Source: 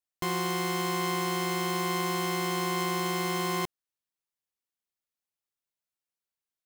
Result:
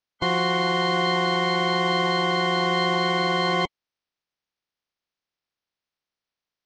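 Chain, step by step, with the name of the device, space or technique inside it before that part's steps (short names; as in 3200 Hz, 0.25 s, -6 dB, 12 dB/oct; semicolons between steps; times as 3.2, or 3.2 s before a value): clip after many re-uploads (LPF 5000 Hz 24 dB/oct; bin magnitudes rounded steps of 30 dB); gain +8 dB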